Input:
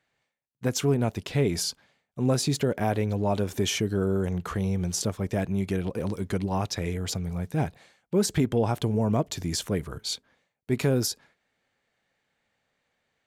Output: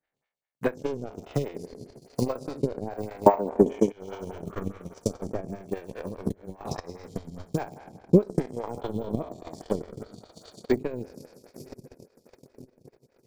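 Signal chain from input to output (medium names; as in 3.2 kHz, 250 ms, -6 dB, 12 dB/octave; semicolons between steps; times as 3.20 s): spectral sustain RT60 1.82 s; 3.26–3.92 s: graphic EQ 125/250/500/1000/2000/4000/8000 Hz -7/+9/+6/+9/+8/-6/+11 dB; de-esser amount 95%; 4.77–5.34 s: de-hum 53.88 Hz, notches 38; 6.21–6.80 s: compressor with a negative ratio -28 dBFS, ratio -0.5; echo that smears into a reverb 899 ms, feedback 43%, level -15 dB; transient shaper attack +10 dB, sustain -4 dB; harmonic tremolo 1.1 Hz, depth 50%, crossover 500 Hz; transient shaper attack +11 dB, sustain -12 dB; lamp-driven phase shifter 4.9 Hz; trim -7.5 dB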